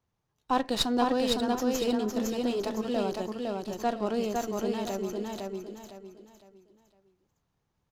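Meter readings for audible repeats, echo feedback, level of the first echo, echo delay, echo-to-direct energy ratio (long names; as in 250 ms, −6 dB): 4, 32%, −3.0 dB, 508 ms, −2.5 dB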